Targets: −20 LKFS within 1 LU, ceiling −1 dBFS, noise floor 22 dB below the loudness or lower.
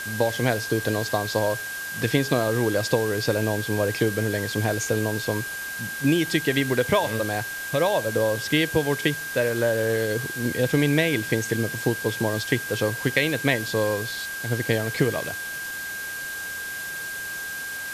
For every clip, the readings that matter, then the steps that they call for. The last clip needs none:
interfering tone 1,600 Hz; level of the tone −31 dBFS; background noise floor −33 dBFS; target noise floor −47 dBFS; integrated loudness −24.5 LKFS; sample peak −7.0 dBFS; target loudness −20.0 LKFS
→ notch filter 1,600 Hz, Q 30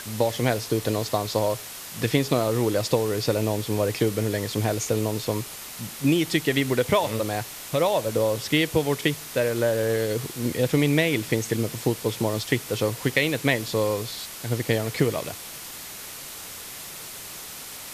interfering tone none found; background noise floor −39 dBFS; target noise floor −47 dBFS
→ broadband denoise 8 dB, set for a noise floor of −39 dBFS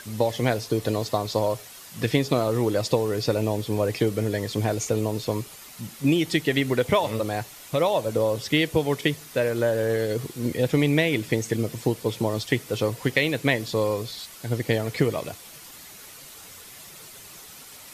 background noise floor −45 dBFS; target noise floor −47 dBFS
→ broadband denoise 6 dB, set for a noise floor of −45 dBFS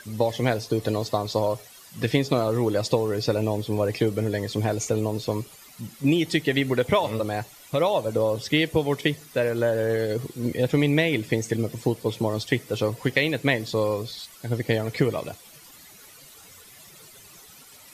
background noise floor −49 dBFS; integrated loudness −25.0 LKFS; sample peak −7.0 dBFS; target loudness −20.0 LKFS
→ level +5 dB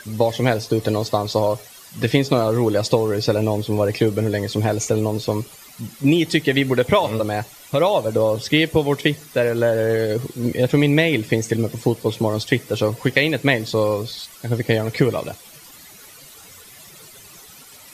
integrated loudness −20.0 LKFS; sample peak −2.0 dBFS; background noise floor −44 dBFS

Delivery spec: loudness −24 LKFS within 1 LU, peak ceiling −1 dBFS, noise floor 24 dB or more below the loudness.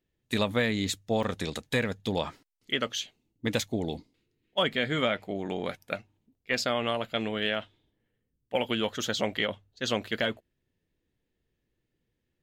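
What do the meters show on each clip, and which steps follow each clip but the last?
number of dropouts 1; longest dropout 4.5 ms; integrated loudness −30.5 LKFS; sample peak −14.0 dBFS; target loudness −24.0 LKFS
→ repair the gap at 0:01.23, 4.5 ms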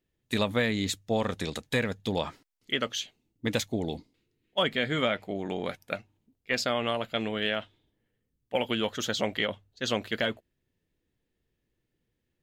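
number of dropouts 0; integrated loudness −30.5 LKFS; sample peak −14.0 dBFS; target loudness −24.0 LKFS
→ level +6.5 dB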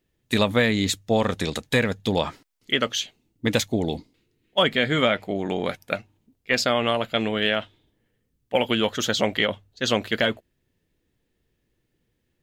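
integrated loudness −24.0 LKFS; sample peak −7.5 dBFS; background noise floor −74 dBFS

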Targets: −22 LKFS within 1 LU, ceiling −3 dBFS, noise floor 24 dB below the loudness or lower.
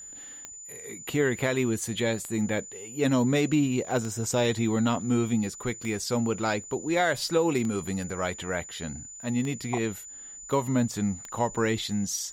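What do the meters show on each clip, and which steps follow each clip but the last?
number of clicks 7; interfering tone 7,000 Hz; level of the tone −41 dBFS; integrated loudness −28.0 LKFS; sample peak −14.0 dBFS; target loudness −22.0 LKFS
→ click removal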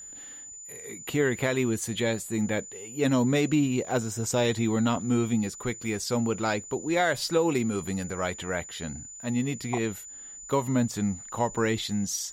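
number of clicks 0; interfering tone 7,000 Hz; level of the tone −41 dBFS
→ notch filter 7,000 Hz, Q 30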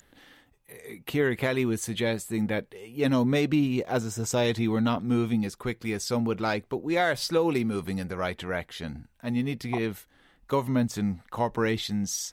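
interfering tone none found; integrated loudness −28.0 LKFS; sample peak −14.0 dBFS; target loudness −22.0 LKFS
→ level +6 dB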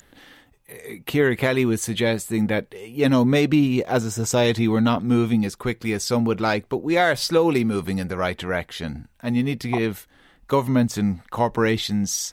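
integrated loudness −22.0 LKFS; sample peak −8.0 dBFS; background noise floor −58 dBFS

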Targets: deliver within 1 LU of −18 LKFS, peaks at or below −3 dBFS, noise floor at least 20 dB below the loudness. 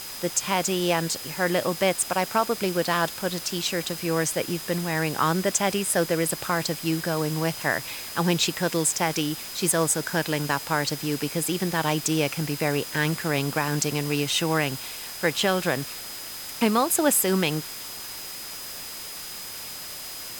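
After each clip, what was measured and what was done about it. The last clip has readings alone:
interfering tone 5,000 Hz; level of the tone −41 dBFS; background noise floor −37 dBFS; target noise floor −46 dBFS; integrated loudness −25.5 LKFS; sample peak −9.0 dBFS; target loudness −18.0 LKFS
→ notch filter 5,000 Hz, Q 30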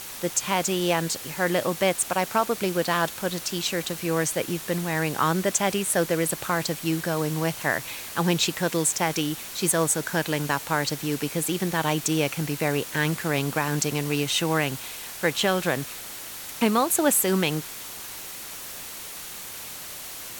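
interfering tone none found; background noise floor −38 dBFS; target noise floor −46 dBFS
→ broadband denoise 8 dB, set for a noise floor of −38 dBFS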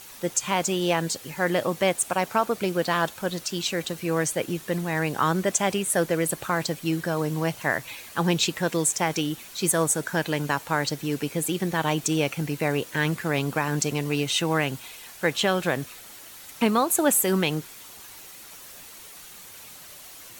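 background noise floor −45 dBFS; target noise floor −46 dBFS
→ broadband denoise 6 dB, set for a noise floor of −45 dBFS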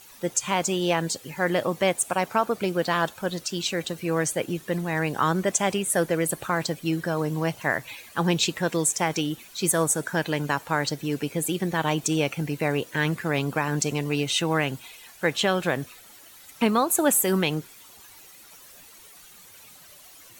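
background noise floor −49 dBFS; integrated loudness −25.5 LKFS; sample peak −9.5 dBFS; target loudness −18.0 LKFS
→ level +7.5 dB
brickwall limiter −3 dBFS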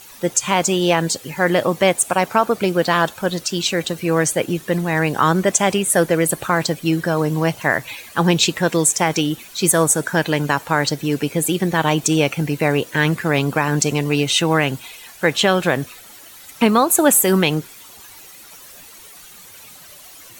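integrated loudness −18.0 LKFS; sample peak −3.0 dBFS; background noise floor −42 dBFS

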